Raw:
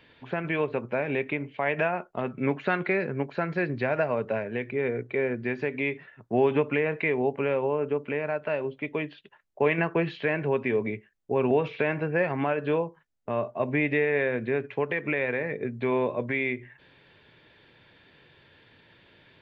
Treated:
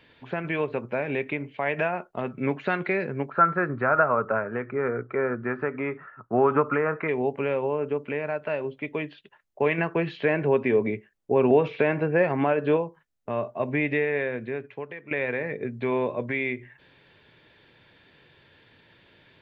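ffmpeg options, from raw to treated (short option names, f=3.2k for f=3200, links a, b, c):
-filter_complex "[0:a]asplit=3[a][b][c];[a]afade=t=out:st=3.29:d=0.02[d];[b]lowpass=f=1.3k:t=q:w=11,afade=t=in:st=3.29:d=0.02,afade=t=out:st=7.07:d=0.02[e];[c]afade=t=in:st=7.07:d=0.02[f];[d][e][f]amix=inputs=3:normalize=0,asettb=1/sr,asplit=3[g][h][i];[g]atrim=end=10.184[j];[h]atrim=start=10.18:end=12.77,asetpts=PTS-STARTPTS,afade=t=in:d=0.004:c=qsin,afade=t=out:st=2.586:d=0.004:c=qsin,equalizer=f=410:w=0.4:g=4.5[k];[i]atrim=start=12.766[l];[j][k]acrossfade=d=0.004:c1=hsin:c2=qsin[m];[m][l]acrossfade=d=0.004:c1=qsin:c2=hsin,asplit=2[n][o];[n]atrim=end=15.11,asetpts=PTS-STARTPTS,afade=t=out:st=13.96:d=1.15:silence=0.188365[p];[o]atrim=start=15.11,asetpts=PTS-STARTPTS,afade=t=in:d=0.004:c=hsin:silence=0.188365[q];[p][q]concat=n=2:v=0:a=1"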